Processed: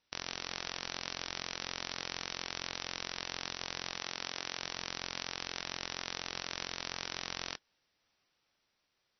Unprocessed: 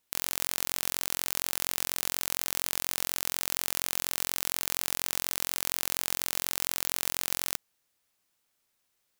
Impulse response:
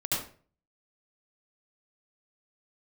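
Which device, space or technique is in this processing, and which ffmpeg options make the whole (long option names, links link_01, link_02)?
low-bitrate web radio: -filter_complex "[0:a]asettb=1/sr,asplit=3[link_01][link_02][link_03];[link_01]atrim=end=3.994[link_04];[link_02]atrim=start=3.99:end=4.62,asetpts=PTS-STARTPTS,afade=type=in:duration=0.004:curve=qsin,afade=type=out:start_time=0.626:duration=0.004:curve=qsin,highpass=frequency=170:poles=1[link_05];[link_03]atrim=start=4.616[link_06];[link_04][link_05]acrossfade=duration=0.004:curve1=hsin:curve2=qsin[link_07];[link_07][link_06]acrossfade=duration=0.004:curve1=qsin:curve2=hsin,dynaudnorm=framelen=270:gausssize=11:maxgain=11.5dB,alimiter=limit=-6.5dB:level=0:latency=1:release=60,volume=1dB" -ar 24000 -c:a libmp3lame -b:a 24k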